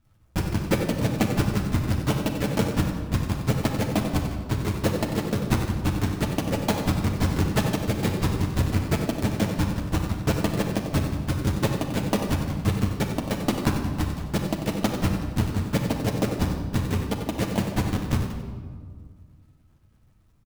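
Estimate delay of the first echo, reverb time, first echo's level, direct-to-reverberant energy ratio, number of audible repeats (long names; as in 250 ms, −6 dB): 93 ms, 1.8 s, −9.0 dB, 1.0 dB, 1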